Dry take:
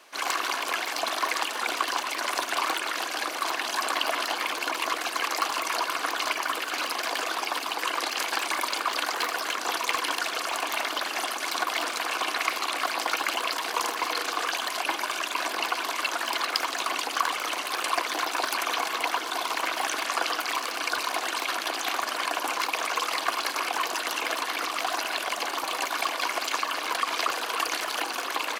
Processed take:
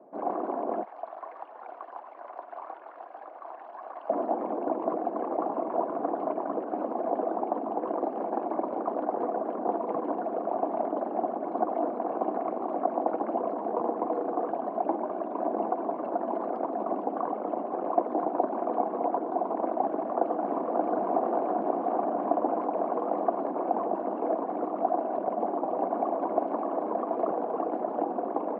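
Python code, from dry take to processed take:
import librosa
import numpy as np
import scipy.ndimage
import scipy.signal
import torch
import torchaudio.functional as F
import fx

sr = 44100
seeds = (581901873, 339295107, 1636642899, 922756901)

y = fx.highpass(x, sr, hz=1400.0, slope=12, at=(0.83, 4.1))
y = fx.echo_throw(y, sr, start_s=19.84, length_s=1.09, ms=580, feedback_pct=80, wet_db=-2.0)
y = fx.echo_throw(y, sr, start_s=25.17, length_s=1.07, ms=590, feedback_pct=65, wet_db=-6.5)
y = scipy.signal.sosfilt(scipy.signal.cheby1(3, 1.0, [140.0, 720.0], 'bandpass', fs=sr, output='sos'), y)
y = fx.peak_eq(y, sr, hz=210.0, db=9.5, octaves=0.48)
y = y * 10.0 ** (8.0 / 20.0)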